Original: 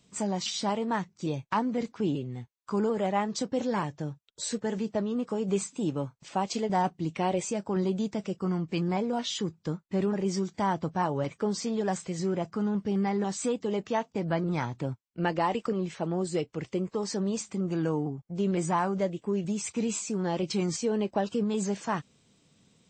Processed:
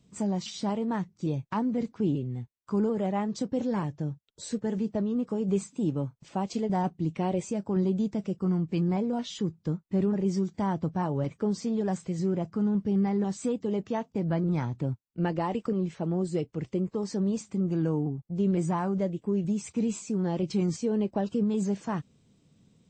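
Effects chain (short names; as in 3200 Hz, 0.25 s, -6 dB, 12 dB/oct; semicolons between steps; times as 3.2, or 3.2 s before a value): low shelf 440 Hz +12 dB; gain -7 dB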